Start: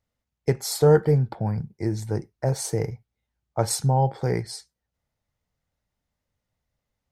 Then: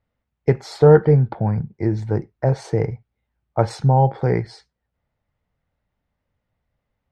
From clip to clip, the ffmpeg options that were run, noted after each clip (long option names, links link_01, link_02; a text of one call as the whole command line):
ffmpeg -i in.wav -af "lowpass=2600,volume=5.5dB" out.wav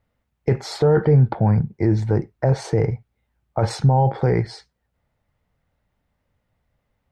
ffmpeg -i in.wav -af "alimiter=limit=-12.5dB:level=0:latency=1:release=21,volume=4.5dB" out.wav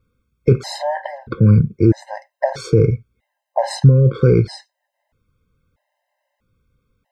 ffmpeg -i in.wav -af "afftfilt=real='re*gt(sin(2*PI*0.78*pts/sr)*(1-2*mod(floor(b*sr/1024/530),2)),0)':imag='im*gt(sin(2*PI*0.78*pts/sr)*(1-2*mod(floor(b*sr/1024/530),2)),0)':win_size=1024:overlap=0.75,volume=6.5dB" out.wav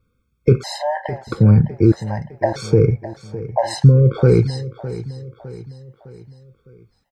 ffmpeg -i in.wav -af "aecho=1:1:608|1216|1824|2432:0.178|0.0854|0.041|0.0197" out.wav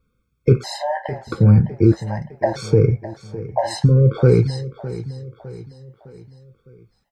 ffmpeg -i in.wav -af "flanger=delay=4.3:depth=9:regen=-57:speed=0.42:shape=triangular,volume=3dB" out.wav